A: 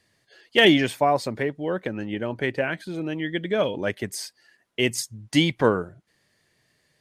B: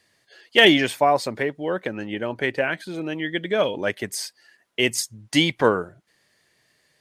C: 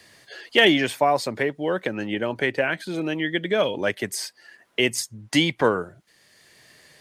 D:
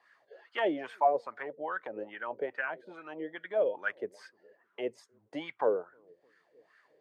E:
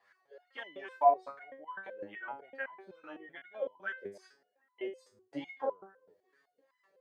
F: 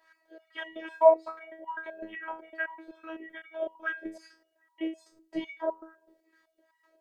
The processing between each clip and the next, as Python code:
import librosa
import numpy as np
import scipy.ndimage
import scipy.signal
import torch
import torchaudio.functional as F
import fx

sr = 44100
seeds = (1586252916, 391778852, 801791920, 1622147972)

y1 = fx.low_shelf(x, sr, hz=270.0, db=-8.0)
y1 = y1 * librosa.db_to_amplitude(3.5)
y2 = fx.band_squash(y1, sr, depth_pct=40)
y3 = fx.echo_bbd(y2, sr, ms=307, stages=1024, feedback_pct=46, wet_db=-20.5)
y3 = fx.wah_lfo(y3, sr, hz=2.4, low_hz=460.0, high_hz=1500.0, q=5.1)
y4 = fx.resonator_held(y3, sr, hz=7.9, low_hz=100.0, high_hz=1000.0)
y4 = y4 * librosa.db_to_amplitude(8.5)
y5 = fx.robotise(y4, sr, hz=322.0)
y5 = y5 * librosa.db_to_amplitude(7.5)